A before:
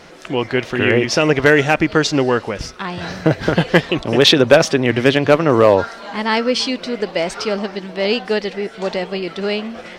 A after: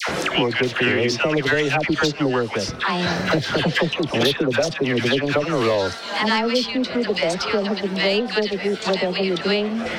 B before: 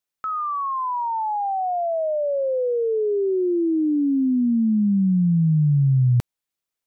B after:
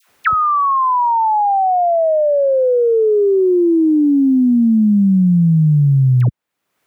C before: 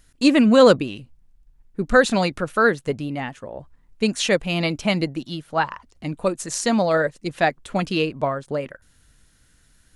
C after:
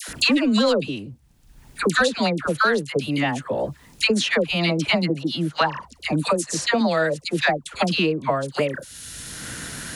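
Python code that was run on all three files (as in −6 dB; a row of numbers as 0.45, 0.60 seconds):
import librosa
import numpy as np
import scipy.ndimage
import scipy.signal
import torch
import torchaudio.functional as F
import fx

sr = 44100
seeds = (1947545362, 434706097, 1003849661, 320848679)

y = scipy.signal.sosfilt(scipy.signal.butter(2, 62.0, 'highpass', fs=sr, output='sos'), x)
y = fx.dynamic_eq(y, sr, hz=3900.0, q=1.3, threshold_db=-37.0, ratio=4.0, max_db=6)
y = 10.0 ** (-3.5 / 20.0) * np.tanh(y / 10.0 ** (-3.5 / 20.0))
y = fx.dispersion(y, sr, late='lows', ms=87.0, hz=1000.0)
y = fx.band_squash(y, sr, depth_pct=100)
y = librosa.util.normalize(y) * 10.0 ** (-6 / 20.0)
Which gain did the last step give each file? −4.5, +6.5, −0.5 decibels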